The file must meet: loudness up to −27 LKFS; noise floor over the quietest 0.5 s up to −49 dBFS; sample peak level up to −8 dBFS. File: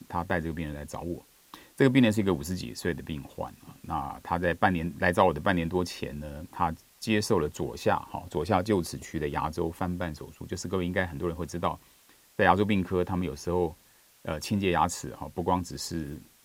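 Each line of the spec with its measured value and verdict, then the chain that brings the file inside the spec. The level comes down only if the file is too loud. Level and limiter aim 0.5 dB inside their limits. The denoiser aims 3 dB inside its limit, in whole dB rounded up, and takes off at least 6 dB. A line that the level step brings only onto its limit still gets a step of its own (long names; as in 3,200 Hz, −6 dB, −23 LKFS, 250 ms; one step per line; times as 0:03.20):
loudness −29.0 LKFS: in spec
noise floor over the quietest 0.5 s −60 dBFS: in spec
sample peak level −5.0 dBFS: out of spec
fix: brickwall limiter −8.5 dBFS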